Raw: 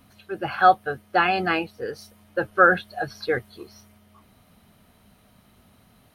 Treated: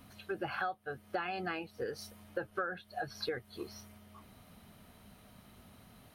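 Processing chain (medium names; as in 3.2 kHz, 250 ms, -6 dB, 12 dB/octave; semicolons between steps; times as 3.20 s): compression 12:1, threshold -33 dBFS, peak gain reduction 23 dB; trim -1 dB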